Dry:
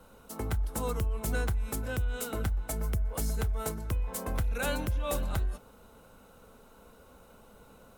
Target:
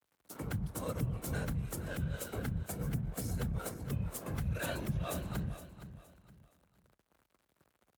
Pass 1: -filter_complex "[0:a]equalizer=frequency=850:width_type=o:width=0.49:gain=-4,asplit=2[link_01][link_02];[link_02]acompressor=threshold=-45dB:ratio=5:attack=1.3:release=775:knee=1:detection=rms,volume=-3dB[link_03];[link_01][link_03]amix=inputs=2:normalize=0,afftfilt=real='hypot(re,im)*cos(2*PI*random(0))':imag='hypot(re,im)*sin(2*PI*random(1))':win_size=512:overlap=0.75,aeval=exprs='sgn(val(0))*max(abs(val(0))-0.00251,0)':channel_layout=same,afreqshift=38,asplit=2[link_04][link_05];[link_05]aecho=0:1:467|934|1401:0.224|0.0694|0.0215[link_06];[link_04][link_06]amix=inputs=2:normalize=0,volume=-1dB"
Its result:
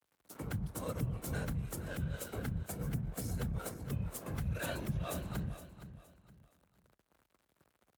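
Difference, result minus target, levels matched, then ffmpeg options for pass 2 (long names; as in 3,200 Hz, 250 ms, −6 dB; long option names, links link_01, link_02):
downward compressor: peak gain reduction +8.5 dB
-filter_complex "[0:a]equalizer=frequency=850:width_type=o:width=0.49:gain=-4,asplit=2[link_01][link_02];[link_02]acompressor=threshold=-34.5dB:ratio=5:attack=1.3:release=775:knee=1:detection=rms,volume=-3dB[link_03];[link_01][link_03]amix=inputs=2:normalize=0,afftfilt=real='hypot(re,im)*cos(2*PI*random(0))':imag='hypot(re,im)*sin(2*PI*random(1))':win_size=512:overlap=0.75,aeval=exprs='sgn(val(0))*max(abs(val(0))-0.00251,0)':channel_layout=same,afreqshift=38,asplit=2[link_04][link_05];[link_05]aecho=0:1:467|934|1401:0.224|0.0694|0.0215[link_06];[link_04][link_06]amix=inputs=2:normalize=0,volume=-1dB"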